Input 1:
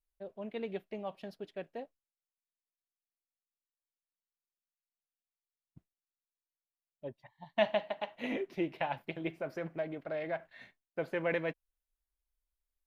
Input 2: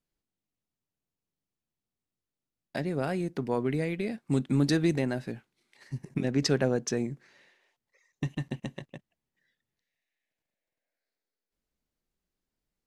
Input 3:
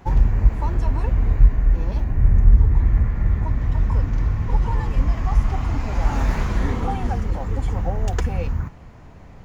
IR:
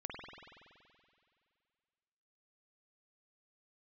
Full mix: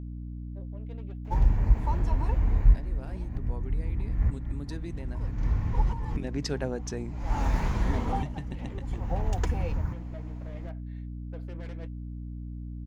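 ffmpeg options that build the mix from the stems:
-filter_complex "[0:a]equalizer=f=290:t=o:w=2.6:g=3,aeval=exprs='(tanh(44.7*val(0)+0.4)-tanh(0.4))/44.7':c=same,flanger=delay=3:depth=4.2:regen=65:speed=1.1:shape=triangular,adelay=350,volume=-6dB[a];[1:a]volume=-6dB,afade=t=in:st=5.83:d=0.35:silence=0.334965,asplit=2[b][c];[2:a]equalizer=f=1.2k:w=1.5:g=-2.5,adelay=1250,volume=-6dB[d];[c]apad=whole_len=471433[e];[d][e]sidechaincompress=threshold=-54dB:ratio=5:attack=16:release=201[f];[a][b][f]amix=inputs=3:normalize=0,adynamicequalizer=threshold=0.00158:dfrequency=910:dqfactor=4.7:tfrequency=910:tqfactor=4.7:attack=5:release=100:ratio=0.375:range=3:mode=boostabove:tftype=bell,aeval=exprs='val(0)+0.0158*(sin(2*PI*60*n/s)+sin(2*PI*2*60*n/s)/2+sin(2*PI*3*60*n/s)/3+sin(2*PI*4*60*n/s)/4+sin(2*PI*5*60*n/s)/5)':c=same"

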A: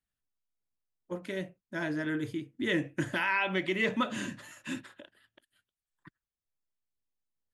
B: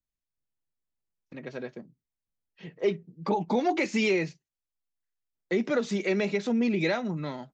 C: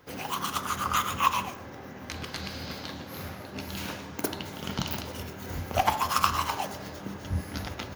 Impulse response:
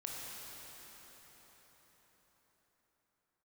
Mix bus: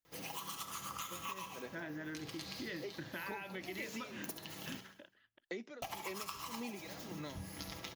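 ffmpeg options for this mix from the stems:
-filter_complex "[0:a]lowpass=2.6k,volume=-7dB[a];[1:a]highpass=200,aeval=exprs='val(0)*pow(10,-21*(0.5-0.5*cos(2*PI*1.8*n/s))/20)':c=same,volume=-5.5dB[b];[2:a]bandreject=f=1.5k:w=8.8,aecho=1:1:6.1:0.48,adelay=50,volume=-11dB,asplit=3[c][d][e];[c]atrim=end=4.81,asetpts=PTS-STARTPTS,afade=t=out:st=4.806:d=0.004:c=hsin[f];[d]atrim=start=4.81:end=5.82,asetpts=PTS-STARTPTS,volume=0[g];[e]atrim=start=5.82,asetpts=PTS-STARTPTS,afade=t=in:d=0.004:c=hsin[h];[f][g][h]concat=n=3:v=0:a=1,asplit=2[i][j];[j]volume=-12dB,aecho=0:1:68|136|204|272|340|408|476:1|0.47|0.221|0.104|0.0488|0.0229|0.0108[k];[a][b][i][k]amix=inputs=4:normalize=0,highshelf=f=2.8k:g=9,acompressor=threshold=-41dB:ratio=6"

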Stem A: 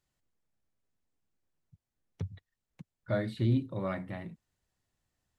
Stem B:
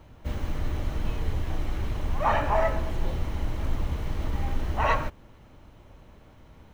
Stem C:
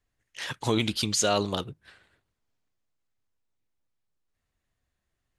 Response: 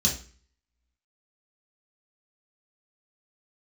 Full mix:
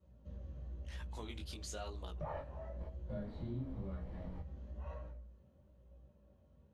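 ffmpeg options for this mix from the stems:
-filter_complex "[0:a]asplit=2[a][b];[b]adelay=9.2,afreqshift=1.2[c];[a][c]amix=inputs=2:normalize=1,volume=-1.5dB,asplit=3[d][e][f];[e]volume=-7.5dB[g];[1:a]equalizer=f=540:t=o:w=0.62:g=11.5,volume=-7.5dB,asplit=2[h][i];[i]volume=-20.5dB[j];[2:a]aemphasis=mode=production:type=bsi,adelay=500,volume=-7dB[k];[f]apad=whole_len=296847[l];[h][l]sidechaingate=range=-33dB:threshold=-56dB:ratio=16:detection=peak[m];[3:a]atrim=start_sample=2205[n];[g][j]amix=inputs=2:normalize=0[o];[o][n]afir=irnorm=-1:irlink=0[p];[d][m][k][p]amix=inputs=4:normalize=0,lowpass=f=1.6k:p=1,flanger=delay=16.5:depth=5.6:speed=1,acompressor=threshold=-49dB:ratio=2"

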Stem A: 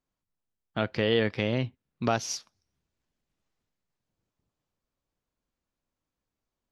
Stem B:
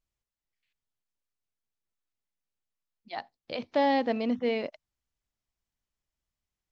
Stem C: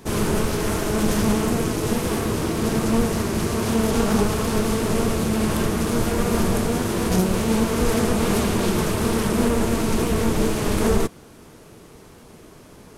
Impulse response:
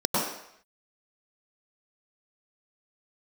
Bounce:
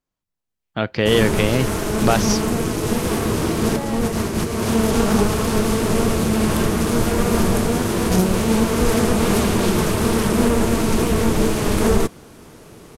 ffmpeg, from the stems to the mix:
-filter_complex "[0:a]volume=1.5dB[a];[1:a]volume=-16.5dB,asplit=2[b][c];[2:a]adelay=1000,volume=-6.5dB[d];[c]apad=whole_len=616110[e];[d][e]sidechaincompress=threshold=-44dB:ratio=8:attack=8.8:release=119[f];[a][b][f]amix=inputs=3:normalize=0,dynaudnorm=f=220:g=7:m=10dB"

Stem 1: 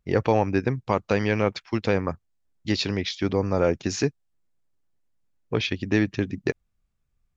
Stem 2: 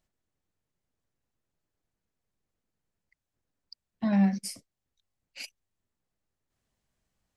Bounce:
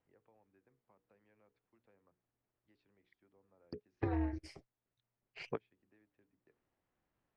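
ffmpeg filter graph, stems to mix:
-filter_complex "[0:a]bandreject=f=60:t=h:w=6,bandreject=f=120:t=h:w=6,bandreject=f=180:t=h:w=6,bandreject=f=240:t=h:w=6,bandreject=f=300:t=h:w=6,bandreject=f=360:t=h:w=6,bandreject=f=420:t=h:w=6,bandreject=f=480:t=h:w=6,acrossover=split=150|350[a][b][c];[a]acompressor=threshold=-46dB:ratio=4[d];[b]acompressor=threshold=-35dB:ratio=4[e];[c]acompressor=threshold=-25dB:ratio=4[f];[d][e][f]amix=inputs=3:normalize=0,volume=-8dB[g];[1:a]lowshelf=f=110:g=-11.5,aeval=exprs='val(0)*sin(2*PI*120*n/s)':c=same,volume=3dB,asplit=2[h][i];[i]apad=whole_len=324926[j];[g][j]sidechaingate=range=-35dB:threshold=-52dB:ratio=16:detection=peak[k];[k][h]amix=inputs=2:normalize=0,lowpass=2k,acompressor=threshold=-32dB:ratio=6"

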